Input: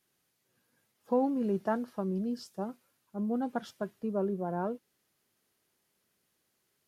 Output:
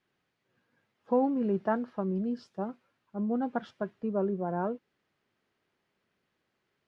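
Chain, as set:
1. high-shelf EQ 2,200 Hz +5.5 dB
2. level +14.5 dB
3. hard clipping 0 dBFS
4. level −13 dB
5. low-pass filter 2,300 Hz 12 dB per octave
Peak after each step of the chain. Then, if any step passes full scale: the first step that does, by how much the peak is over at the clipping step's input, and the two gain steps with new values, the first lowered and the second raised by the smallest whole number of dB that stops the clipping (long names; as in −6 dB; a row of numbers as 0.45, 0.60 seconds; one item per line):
−17.0, −2.5, −2.5, −15.5, −15.5 dBFS
no step passes full scale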